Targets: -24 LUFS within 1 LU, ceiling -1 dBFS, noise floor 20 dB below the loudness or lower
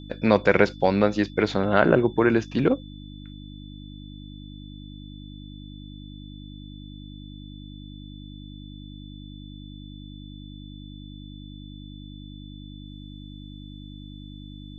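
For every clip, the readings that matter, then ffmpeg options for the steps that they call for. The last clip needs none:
hum 50 Hz; highest harmonic 300 Hz; hum level -38 dBFS; steady tone 3.5 kHz; tone level -50 dBFS; loudness -21.5 LUFS; peak level -2.0 dBFS; loudness target -24.0 LUFS
-> -af "bandreject=f=50:t=h:w=4,bandreject=f=100:t=h:w=4,bandreject=f=150:t=h:w=4,bandreject=f=200:t=h:w=4,bandreject=f=250:t=h:w=4,bandreject=f=300:t=h:w=4"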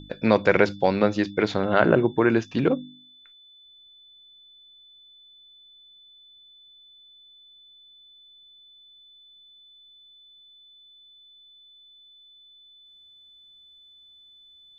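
hum not found; steady tone 3.5 kHz; tone level -50 dBFS
-> -af "bandreject=f=3500:w=30"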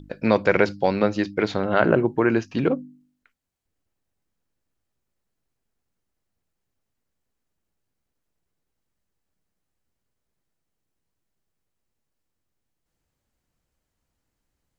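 steady tone not found; loudness -22.0 LUFS; peak level -2.0 dBFS; loudness target -24.0 LUFS
-> -af "volume=0.794"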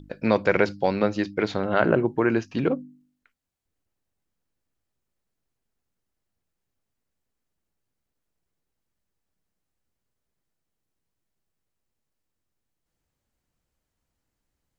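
loudness -24.0 LUFS; peak level -4.0 dBFS; noise floor -82 dBFS

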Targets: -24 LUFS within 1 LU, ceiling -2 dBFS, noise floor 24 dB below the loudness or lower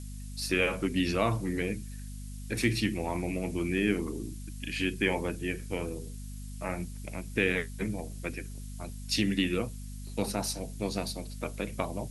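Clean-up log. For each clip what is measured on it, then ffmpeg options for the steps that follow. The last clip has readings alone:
hum 50 Hz; highest harmonic 250 Hz; hum level -39 dBFS; noise floor -41 dBFS; noise floor target -56 dBFS; loudness -32.0 LUFS; peak level -12.0 dBFS; loudness target -24.0 LUFS
-> -af "bandreject=f=50:t=h:w=6,bandreject=f=100:t=h:w=6,bandreject=f=150:t=h:w=6,bandreject=f=200:t=h:w=6,bandreject=f=250:t=h:w=6"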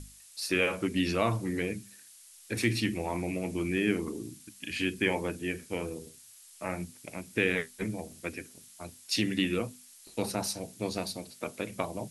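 hum not found; noise floor -54 dBFS; noise floor target -56 dBFS
-> -af "afftdn=nr=6:nf=-54"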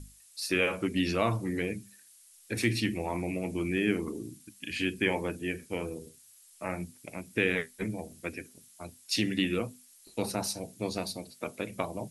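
noise floor -58 dBFS; loudness -32.5 LUFS; peak level -13.0 dBFS; loudness target -24.0 LUFS
-> -af "volume=2.66"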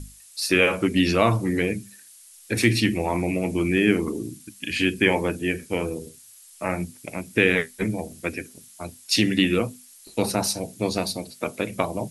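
loudness -24.0 LUFS; peak level -4.5 dBFS; noise floor -50 dBFS

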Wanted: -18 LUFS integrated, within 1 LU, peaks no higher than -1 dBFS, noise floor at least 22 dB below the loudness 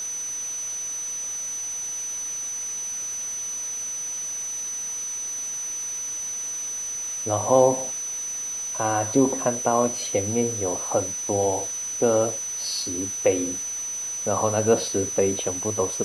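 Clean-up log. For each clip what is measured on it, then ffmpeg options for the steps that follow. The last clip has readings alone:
steady tone 6 kHz; tone level -28 dBFS; noise floor -31 dBFS; noise floor target -47 dBFS; loudness -25.0 LUFS; peak level -5.0 dBFS; loudness target -18.0 LUFS
-> -af "bandreject=f=6000:w=30"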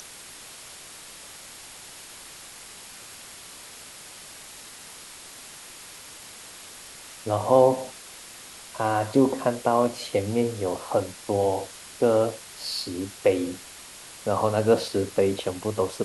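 steady tone not found; noise floor -44 dBFS; noise floor target -47 dBFS
-> -af "afftdn=nr=6:nf=-44"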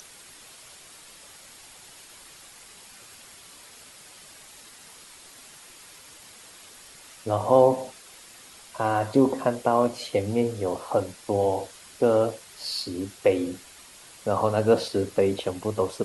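noise floor -49 dBFS; loudness -25.0 LUFS; peak level -5.5 dBFS; loudness target -18.0 LUFS
-> -af "volume=2.24,alimiter=limit=0.891:level=0:latency=1"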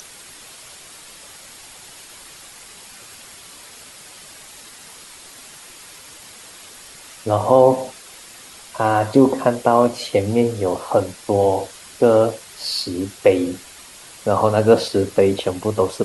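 loudness -18.0 LUFS; peak level -1.0 dBFS; noise floor -42 dBFS

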